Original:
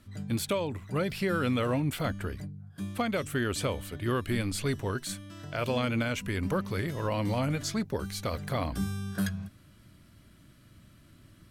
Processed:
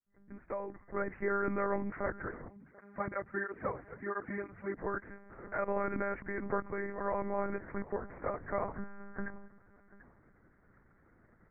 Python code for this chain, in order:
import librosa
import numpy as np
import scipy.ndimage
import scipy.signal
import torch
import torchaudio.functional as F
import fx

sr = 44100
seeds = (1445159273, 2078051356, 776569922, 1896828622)

y = fx.fade_in_head(x, sr, length_s=1.18)
y = fx.low_shelf(y, sr, hz=88.0, db=-11.0)
y = fx.echo_feedback(y, sr, ms=739, feedback_pct=22, wet_db=-19.5)
y = fx.lpc_monotone(y, sr, seeds[0], pitch_hz=200.0, order=10)
y = scipy.signal.sosfilt(scipy.signal.butter(12, 2000.0, 'lowpass', fs=sr, output='sos'), y)
y = fx.low_shelf(y, sr, hz=240.0, db=-8.5)
y = fx.flanger_cancel(y, sr, hz=1.5, depth_ms=5.0, at=(2.48, 4.77))